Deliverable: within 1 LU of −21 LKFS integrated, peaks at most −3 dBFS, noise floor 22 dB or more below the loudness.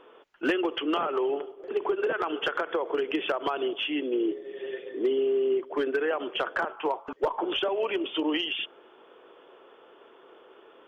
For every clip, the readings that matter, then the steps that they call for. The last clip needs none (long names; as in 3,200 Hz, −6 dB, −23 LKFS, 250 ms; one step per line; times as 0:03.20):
share of clipped samples 0.2%; peaks flattened at −18.5 dBFS; integrated loudness −29.0 LKFS; sample peak −18.5 dBFS; target loudness −21.0 LKFS
→ clipped peaks rebuilt −18.5 dBFS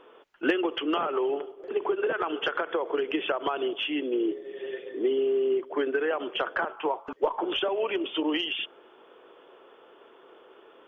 share of clipped samples 0.0%; integrated loudness −29.0 LKFS; sample peak −9.5 dBFS; target loudness −21.0 LKFS
→ level +8 dB
brickwall limiter −3 dBFS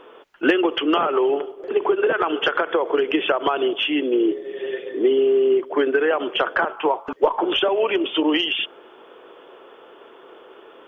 integrated loudness −21.0 LKFS; sample peak −3.0 dBFS; background noise floor −47 dBFS